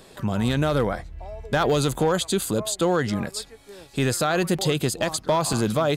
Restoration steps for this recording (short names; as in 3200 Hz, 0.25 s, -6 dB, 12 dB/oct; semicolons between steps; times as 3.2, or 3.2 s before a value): clip repair -13.5 dBFS; interpolate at 1.95/3.3/5.53, 1.8 ms